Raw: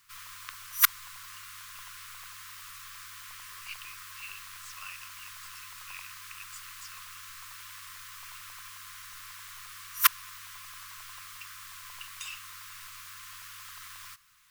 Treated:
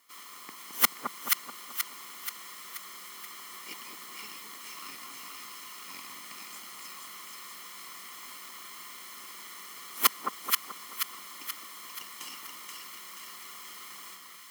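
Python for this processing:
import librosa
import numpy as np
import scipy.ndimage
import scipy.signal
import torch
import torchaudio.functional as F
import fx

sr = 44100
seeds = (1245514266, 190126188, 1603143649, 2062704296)

y = fx.lower_of_two(x, sr, delay_ms=0.96)
y = scipy.signal.sosfilt(scipy.signal.butter(4, 220.0, 'highpass', fs=sr, output='sos'), y)
y = fx.peak_eq(y, sr, hz=300.0, db=2.5, octaves=2.9)
y = fx.echo_split(y, sr, split_hz=1300.0, low_ms=216, high_ms=480, feedback_pct=52, wet_db=-3)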